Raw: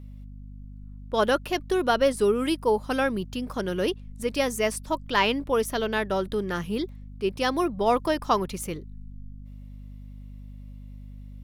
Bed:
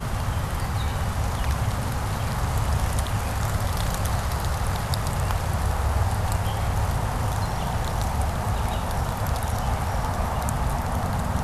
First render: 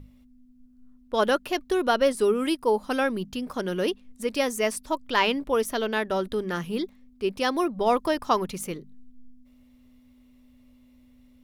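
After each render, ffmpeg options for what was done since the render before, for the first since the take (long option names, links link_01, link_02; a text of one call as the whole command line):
ffmpeg -i in.wav -af "bandreject=frequency=50:width_type=h:width=6,bandreject=frequency=100:width_type=h:width=6,bandreject=frequency=150:width_type=h:width=6,bandreject=frequency=200:width_type=h:width=6" out.wav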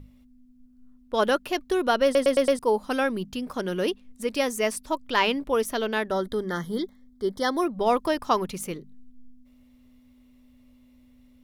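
ffmpeg -i in.wav -filter_complex "[0:a]asplit=3[link_01][link_02][link_03];[link_01]afade=type=out:start_time=6.1:duration=0.02[link_04];[link_02]asuperstop=centerf=2600:order=12:qfactor=2.8,afade=type=in:start_time=6.1:duration=0.02,afade=type=out:start_time=7.61:duration=0.02[link_05];[link_03]afade=type=in:start_time=7.61:duration=0.02[link_06];[link_04][link_05][link_06]amix=inputs=3:normalize=0,asplit=6[link_07][link_08][link_09][link_10][link_11][link_12];[link_07]atrim=end=2.152[link_13];[link_08]atrim=start=2.038:end=2.152[link_14];[link_09]atrim=start=2.038:end=2.152[link_15];[link_10]atrim=start=2.038:end=2.152[link_16];[link_11]atrim=start=2.038:end=2.152[link_17];[link_12]atrim=start=2.588[link_18];[link_13][link_14]acrossfade=duration=0.004:curve1=hsin:curve2=hsin[link_19];[link_19][link_15]acrossfade=duration=0.004:curve1=hsin:curve2=hsin[link_20];[link_20][link_16]acrossfade=duration=0.004:curve1=hsin:curve2=hsin[link_21];[link_21][link_17]acrossfade=duration=0.004:curve1=hsin:curve2=hsin[link_22];[link_22][link_18]acrossfade=duration=0.004:curve1=hsin:curve2=hsin" out.wav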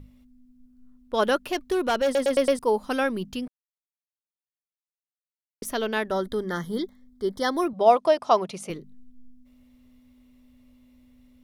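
ffmpeg -i in.wav -filter_complex "[0:a]asettb=1/sr,asplit=3[link_01][link_02][link_03];[link_01]atrim=end=1.474[link_04];[link_02]atrim=start=1.47:end=2.31,asetpts=PTS-STARTPTS,afade=type=in:duration=0.004:curve=qsin,afade=type=out:start_time=0.836:duration=0.004:curve=qsin,asoftclip=type=hard:threshold=-18.5dB[link_05];[link_03]atrim=start=2.306[link_06];[link_04][link_05]acrossfade=duration=0.004:curve1=hsin:curve2=qsin[link_07];[link_07][link_06]acrossfade=duration=0.004:curve1=qsin:curve2=hsin,asettb=1/sr,asplit=3[link_08][link_09][link_10];[link_08]atrim=end=7.734[link_11];[link_09]atrim=start=7.73:end=8.7,asetpts=PTS-STARTPTS,afade=type=in:duration=0.004:curve=qsin,afade=type=out:start_time=0.966:duration=0.004:curve=qsin,highpass=170,equalizer=frequency=280:width_type=q:width=4:gain=-8,equalizer=frequency=660:width_type=q:width=4:gain=10,equalizer=frequency=1700:width_type=q:width=4:gain=-5,equalizer=frequency=7400:width_type=q:width=4:gain=-5,lowpass=frequency=9200:width=0.5412,lowpass=frequency=9200:width=1.3066[link_12];[link_10]atrim=start=8.696[link_13];[link_11][link_12]acrossfade=duration=0.004:curve1=hsin:curve2=qsin[link_14];[link_14][link_13]acrossfade=duration=0.004:curve1=qsin:curve2=hsin,asplit=3[link_15][link_16][link_17];[link_15]atrim=end=3.48,asetpts=PTS-STARTPTS,afade=type=out:start_time=3.476:duration=0.004:curve=hsin[link_18];[link_16]atrim=start=3.48:end=5.62,asetpts=PTS-STARTPTS,volume=0[link_19];[link_17]atrim=start=5.62,asetpts=PTS-STARTPTS,afade=type=in:duration=0.004:curve=hsin[link_20];[link_18][link_19][link_20]concat=n=3:v=0:a=1" out.wav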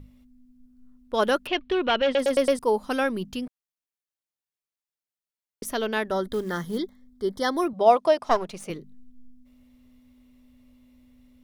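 ffmpeg -i in.wav -filter_complex "[0:a]asettb=1/sr,asplit=3[link_01][link_02][link_03];[link_01]atrim=end=1.474[link_04];[link_02]atrim=start=1.47:end=2.19,asetpts=PTS-STARTPTS,afade=type=in:duration=0.004:curve=qsin,afade=type=out:start_time=0.716:duration=0.004:curve=qsin,lowpass=frequency=3000:width_type=q:width=2.5[link_05];[link_03]atrim=start=2.186[link_06];[link_04][link_05]acrossfade=duration=0.004:curve1=hsin:curve2=qsin[link_07];[link_07][link_06]acrossfade=duration=0.004:curve1=qsin:curve2=hsin,asettb=1/sr,asplit=3[link_08][link_09][link_10];[link_08]atrim=end=6.334[link_11];[link_09]atrim=start=6.33:end=6.78,asetpts=PTS-STARTPTS,afade=type=in:duration=0.004:curve=qsin,afade=type=out:start_time=0.446:duration=0.004:curve=qsin,acrusher=bits=6:mode=log:mix=0:aa=0.000001[link_12];[link_10]atrim=start=6.776[link_13];[link_11][link_12]acrossfade=duration=0.004:curve1=hsin:curve2=qsin[link_14];[link_14][link_13]acrossfade=duration=0.004:curve1=qsin:curve2=hsin,asettb=1/sr,asplit=3[link_15][link_16][link_17];[link_15]atrim=end=8.244[link_18];[link_16]atrim=start=8.24:end=8.67,asetpts=PTS-STARTPTS,afade=type=in:duration=0.004:curve=qsin,afade=type=out:start_time=0.426:duration=0.004:curve=qsin,aeval=exprs='if(lt(val(0),0),0.447*val(0),val(0))':channel_layout=same[link_19];[link_17]atrim=start=8.666[link_20];[link_18][link_19]acrossfade=duration=0.004:curve1=hsin:curve2=qsin[link_21];[link_21][link_20]acrossfade=duration=0.004:curve1=qsin:curve2=hsin" out.wav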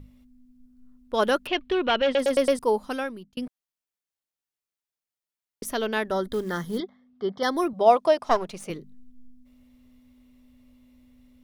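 ffmpeg -i in.wav -filter_complex "[0:a]asettb=1/sr,asplit=3[link_01][link_02][link_03];[link_01]atrim=end=6.804[link_04];[link_02]atrim=start=6.8:end=7.43,asetpts=PTS-STARTPTS,afade=type=in:duration=0.004:curve=qsin,afade=type=out:start_time=0.626:duration=0.004:curve=qsin,highpass=160,equalizer=frequency=160:width_type=q:width=4:gain=8,equalizer=frequency=300:width_type=q:width=4:gain=-8,equalizer=frequency=720:width_type=q:width=4:gain=9,equalizer=frequency=1200:width_type=q:width=4:gain=6,equalizer=frequency=2700:width_type=q:width=4:gain=8,equalizer=frequency=4000:width_type=q:width=4:gain=-5,lowpass=frequency=4500:width=0.5412,lowpass=frequency=4500:width=1.3066[link_05];[link_03]atrim=start=7.426[link_06];[link_04][link_05]acrossfade=duration=0.004:curve1=hsin:curve2=qsin[link_07];[link_07][link_06]acrossfade=duration=0.004:curve1=qsin:curve2=hsin,asplit=2[link_08][link_09];[link_08]atrim=end=3.37,asetpts=PTS-STARTPTS,afade=type=out:start_time=2.71:duration=0.66[link_10];[link_09]atrim=start=3.37,asetpts=PTS-STARTPTS,afade=type=in:duration=0.004:curve=hsin[link_11];[link_10][link_11]concat=n=2:v=0:a=1" out.wav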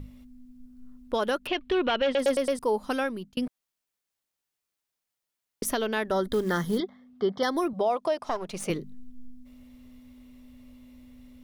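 ffmpeg -i in.wav -filter_complex "[0:a]asplit=2[link_01][link_02];[link_02]acompressor=threshold=-30dB:ratio=6,volume=-0.5dB[link_03];[link_01][link_03]amix=inputs=2:normalize=0,alimiter=limit=-17dB:level=0:latency=1:release=282" out.wav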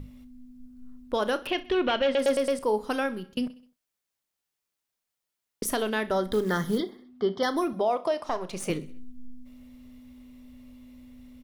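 ffmpeg -i in.wav -filter_complex "[0:a]asplit=2[link_01][link_02];[link_02]adelay=33,volume=-14dB[link_03];[link_01][link_03]amix=inputs=2:normalize=0,aecho=1:1:64|128|192|256:0.112|0.0572|0.0292|0.0149" out.wav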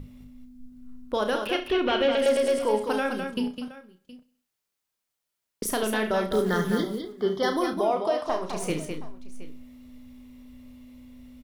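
ffmpeg -i in.wav -filter_complex "[0:a]asplit=2[link_01][link_02];[link_02]adelay=33,volume=-13.5dB[link_03];[link_01][link_03]amix=inputs=2:normalize=0,aecho=1:1:69|207|720:0.251|0.473|0.119" out.wav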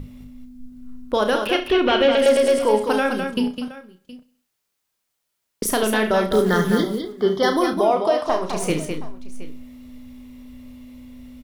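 ffmpeg -i in.wav -af "volume=6.5dB" out.wav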